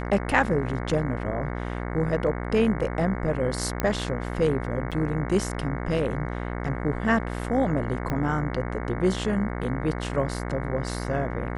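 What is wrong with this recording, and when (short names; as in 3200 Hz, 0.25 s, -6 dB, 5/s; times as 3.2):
buzz 60 Hz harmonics 37 -31 dBFS
3.8 pop -10 dBFS
4.91–4.92 gap 6.8 ms
8.1 pop -16 dBFS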